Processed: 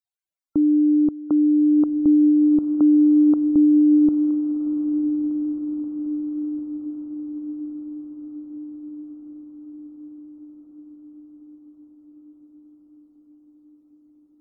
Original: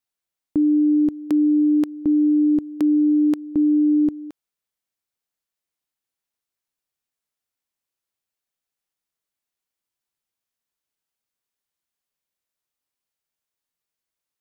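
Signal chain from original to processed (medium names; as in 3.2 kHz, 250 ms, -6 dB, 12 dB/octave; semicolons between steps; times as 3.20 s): loudest bins only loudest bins 64; echo that smears into a reverb 1441 ms, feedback 61%, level -9 dB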